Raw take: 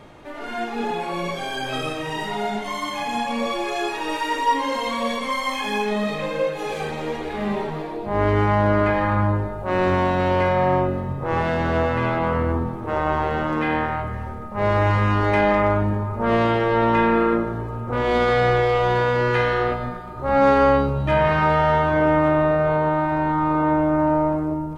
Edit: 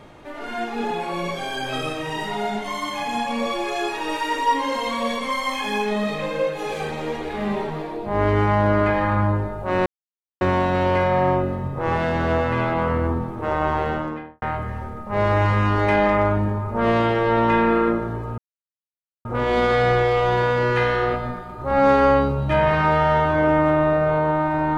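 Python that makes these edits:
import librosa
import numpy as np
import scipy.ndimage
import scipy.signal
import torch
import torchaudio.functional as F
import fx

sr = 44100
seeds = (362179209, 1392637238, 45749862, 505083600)

y = fx.studio_fade_out(x, sr, start_s=13.28, length_s=0.59)
y = fx.edit(y, sr, fx.insert_silence(at_s=9.86, length_s=0.55),
    fx.insert_silence(at_s=17.83, length_s=0.87), tone=tone)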